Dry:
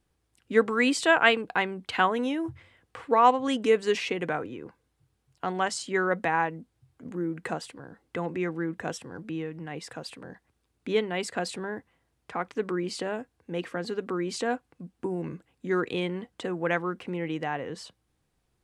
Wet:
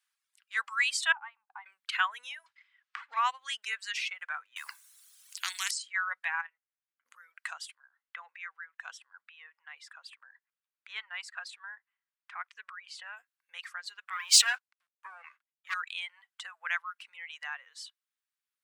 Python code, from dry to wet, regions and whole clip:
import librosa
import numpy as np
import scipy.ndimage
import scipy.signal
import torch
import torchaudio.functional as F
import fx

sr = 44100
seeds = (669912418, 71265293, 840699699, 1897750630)

y = fx.chain(x, sr, fx.double_bandpass(hz=400.0, octaves=2.2),
    fx.band_squash(depth_pct=70), at=(1.12, 1.66))
y = fx.chain(y, sr, fx.leveller(passes=1),
    fx.air_absorb(metres=120.0),
    fx.band_squash(depth_pct=70), at=(2.46, 3.17))
y = fx.chain(y, sr, fx.high_shelf(hz=4800.0, db=10.0),
    fx.spectral_comp(ratio=4.0), at=(4.56, 5.71))
y = fx.chain(y, sr, fx.lowpass(hz=2200.0, slope=12),
    fx.level_steps(step_db=10),
    fx.tilt_eq(slope=3.0), at=(6.41, 7.06))
y = fx.chain(y, sr, fx.lowpass(hz=2100.0, slope=6),
    fx.low_shelf(hz=290.0, db=-4.0), at=(7.75, 13.17))
y = fx.chain(y, sr, fx.highpass(hz=270.0, slope=12),
    fx.leveller(passes=3),
    fx.band_widen(depth_pct=100), at=(14.1, 15.74))
y = fx.dereverb_blind(y, sr, rt60_s=1.6)
y = scipy.signal.sosfilt(scipy.signal.cheby2(4, 60, 370.0, 'highpass', fs=sr, output='sos'), y)